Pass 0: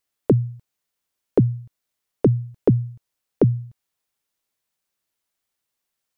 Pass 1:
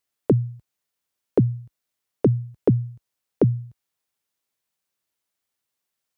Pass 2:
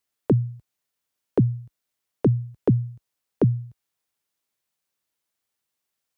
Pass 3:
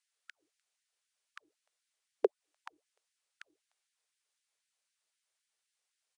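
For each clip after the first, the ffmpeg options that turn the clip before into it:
-af "highpass=50,volume=0.841"
-filter_complex "[0:a]acrossover=split=410[s0][s1];[s1]acompressor=threshold=0.0355:ratio=6[s2];[s0][s2]amix=inputs=2:normalize=0"
-af "aresample=22050,aresample=44100,equalizer=f=125:t=o:w=1:g=4,equalizer=f=250:t=o:w=1:g=-7,equalizer=f=1000:t=o:w=1:g=-4,afftfilt=real='re*gte(b*sr/1024,330*pow(1500/330,0.5+0.5*sin(2*PI*3.9*pts/sr)))':imag='im*gte(b*sr/1024,330*pow(1500/330,0.5+0.5*sin(2*PI*3.9*pts/sr)))':win_size=1024:overlap=0.75"

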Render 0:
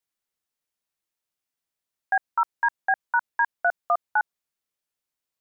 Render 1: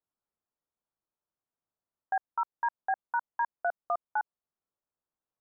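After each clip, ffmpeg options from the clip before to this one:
-af "lowpass=f=1300:w=0.5412,lowpass=f=1300:w=1.3066,alimiter=limit=0.0841:level=0:latency=1:release=408"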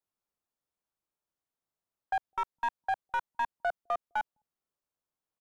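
-filter_complex "[0:a]acrossover=split=270|800[s0][s1][s2];[s0]aecho=1:1:207:0.299[s3];[s2]aeval=exprs='clip(val(0),-1,0.0237)':c=same[s4];[s3][s1][s4]amix=inputs=3:normalize=0"

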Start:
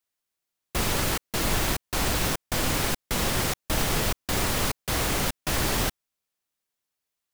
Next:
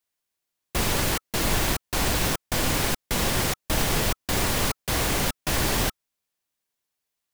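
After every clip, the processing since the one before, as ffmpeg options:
-af "bandreject=f=1300:w=21,volume=1.19"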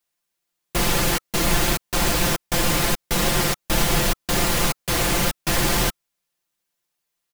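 -af "aecho=1:1:5.8:0.68,volume=1.26"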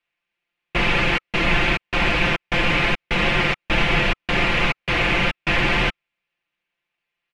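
-af "lowpass=f=2500:t=q:w=3.2"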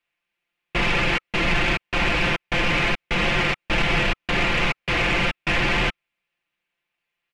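-af "asoftclip=type=tanh:threshold=0.211"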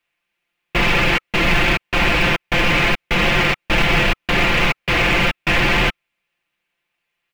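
-af "acrusher=bits=7:mode=log:mix=0:aa=0.000001,volume=1.78"

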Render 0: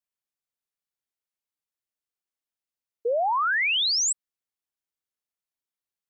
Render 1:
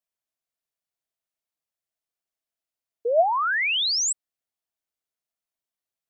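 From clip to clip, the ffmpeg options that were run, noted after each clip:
-af "equalizer=f=660:t=o:w=0.21:g=9.5"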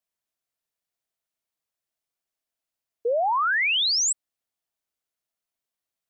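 -af "alimiter=limit=0.0841:level=0:latency=1,volume=1.26"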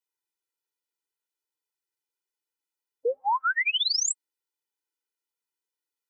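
-af "afftfilt=real='re*eq(mod(floor(b*sr/1024/260),2),1)':imag='im*eq(mod(floor(b*sr/1024/260),2),1)':win_size=1024:overlap=0.75"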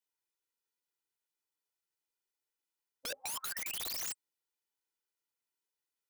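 -af "aeval=exprs='(mod(37.6*val(0)+1,2)-1)/37.6':c=same,volume=0.794"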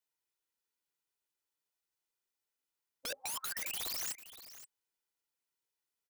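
-af "aecho=1:1:522:0.188"

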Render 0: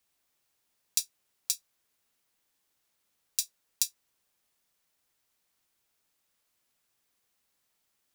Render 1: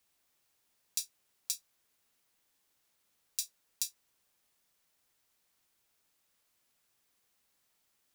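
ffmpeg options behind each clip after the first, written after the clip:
-af "alimiter=limit=0.237:level=0:latency=1:release=63,volume=1.12"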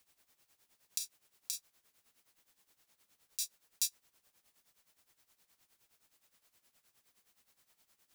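-af "tremolo=f=9.6:d=0.78,volume=2.24"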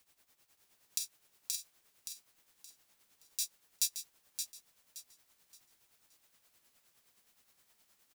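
-af "aecho=1:1:572|1144|1716|2288:0.422|0.122|0.0355|0.0103,volume=1.19"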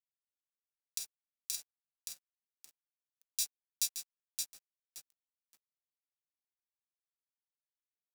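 -af "alimiter=limit=0.158:level=0:latency=1:release=171,aeval=exprs='sgn(val(0))*max(abs(val(0))-0.00251,0)':c=same,volume=1.33"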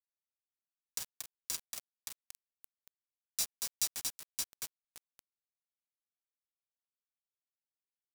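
-filter_complex "[0:a]acrossover=split=320|980|1900[s0][s1][s2][s3];[s2]acrusher=samples=10:mix=1:aa=0.000001:lfo=1:lforange=10:lforate=0.45[s4];[s0][s1][s4][s3]amix=inputs=4:normalize=0,aecho=1:1:232:0.562,acrusher=bits=5:mix=0:aa=0.000001"

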